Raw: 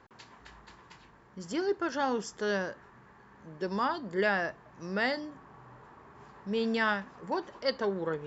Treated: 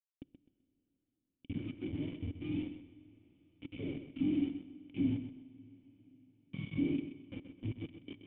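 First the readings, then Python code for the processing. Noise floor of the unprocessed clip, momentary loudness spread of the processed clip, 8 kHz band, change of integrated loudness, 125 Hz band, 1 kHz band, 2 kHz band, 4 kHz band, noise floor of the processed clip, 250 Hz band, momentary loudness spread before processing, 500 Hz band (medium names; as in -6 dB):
-58 dBFS, 21 LU, no reading, -7.0 dB, +2.5 dB, under -30 dB, -21.5 dB, -14.5 dB, under -85 dBFS, -0.5 dB, 17 LU, -17.5 dB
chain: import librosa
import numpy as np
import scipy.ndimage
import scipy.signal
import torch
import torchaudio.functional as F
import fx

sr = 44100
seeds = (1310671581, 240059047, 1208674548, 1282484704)

y = fx.octave_mirror(x, sr, pivot_hz=710.0)
y = fx.curve_eq(y, sr, hz=(200.0, 1900.0, 3000.0), db=(0, -15, -2))
y = np.clip(y, -10.0 ** (-33.0 / 20.0), 10.0 ** (-33.0 / 20.0))
y = fx.quant_dither(y, sr, seeds[0], bits=6, dither='none')
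y = fx.formant_cascade(y, sr, vowel='i')
y = fx.air_absorb(y, sr, metres=110.0)
y = fx.echo_feedback(y, sr, ms=128, feedback_pct=27, wet_db=-10.0)
y = fx.rev_plate(y, sr, seeds[1], rt60_s=5.0, hf_ratio=0.95, predelay_ms=0, drr_db=17.5)
y = y * librosa.db_to_amplitude(7.0)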